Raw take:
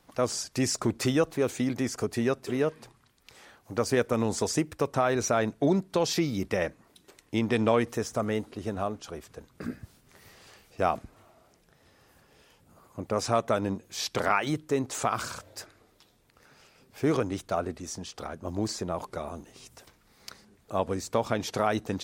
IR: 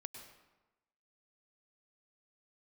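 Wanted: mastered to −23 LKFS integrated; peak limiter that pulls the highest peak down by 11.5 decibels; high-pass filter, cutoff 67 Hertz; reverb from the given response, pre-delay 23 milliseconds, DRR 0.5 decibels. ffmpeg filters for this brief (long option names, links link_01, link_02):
-filter_complex "[0:a]highpass=67,alimiter=limit=-21dB:level=0:latency=1,asplit=2[link_01][link_02];[1:a]atrim=start_sample=2205,adelay=23[link_03];[link_02][link_03]afir=irnorm=-1:irlink=0,volume=3.5dB[link_04];[link_01][link_04]amix=inputs=2:normalize=0,volume=8dB"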